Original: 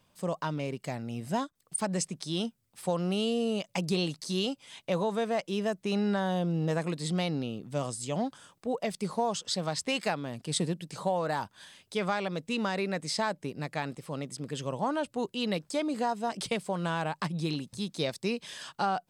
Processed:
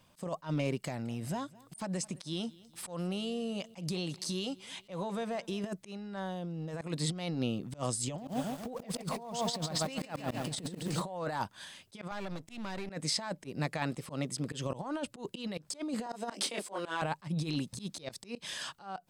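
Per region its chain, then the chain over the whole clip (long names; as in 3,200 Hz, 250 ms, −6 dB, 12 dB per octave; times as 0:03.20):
0:00.77–0:05.64: downward compressor, threshold −35 dBFS + repeating echo 212 ms, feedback 44%, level −22 dB
0:08.04–0:11.02: low-shelf EQ 490 Hz +3.5 dB + feedback echo at a low word length 139 ms, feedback 55%, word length 8 bits, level −6 dB
0:12.11–0:12.90: gain on one half-wave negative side −12 dB + downward compressor, threshold −37 dBFS + notch filter 470 Hz, Q 7
0:16.06–0:17.02: Butterworth high-pass 240 Hz + double-tracking delay 25 ms −5 dB
whole clip: compressor whose output falls as the input rises −33 dBFS, ratio −0.5; notch filter 430 Hz, Q 12; volume swells 110 ms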